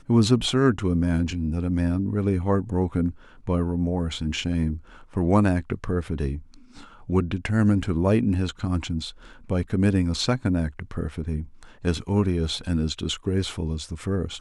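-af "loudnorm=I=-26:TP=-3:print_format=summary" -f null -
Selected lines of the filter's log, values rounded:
Input Integrated:    -25.2 LUFS
Input True Peak:      -5.6 dBTP
Input LRA:             2.9 LU
Input Threshold:     -35.5 LUFS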